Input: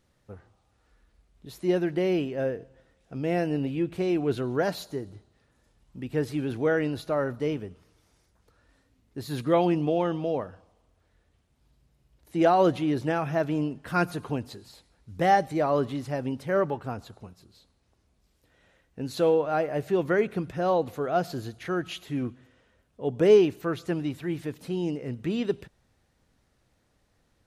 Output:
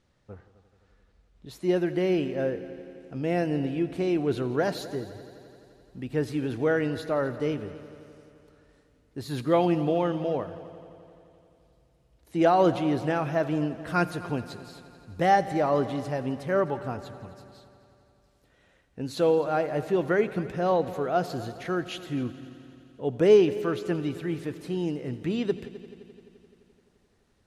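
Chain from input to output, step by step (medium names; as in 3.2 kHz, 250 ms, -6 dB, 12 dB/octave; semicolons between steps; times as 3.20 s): low-pass 6.9 kHz 12 dB/octave, from 1.51 s 12 kHz; multi-head delay 86 ms, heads all three, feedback 65%, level -21 dB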